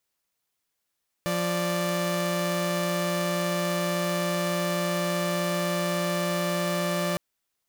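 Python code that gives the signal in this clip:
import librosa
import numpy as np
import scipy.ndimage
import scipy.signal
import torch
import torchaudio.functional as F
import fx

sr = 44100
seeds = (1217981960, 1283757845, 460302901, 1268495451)

y = fx.chord(sr, length_s=5.91, notes=(53, 74), wave='saw', level_db=-25.0)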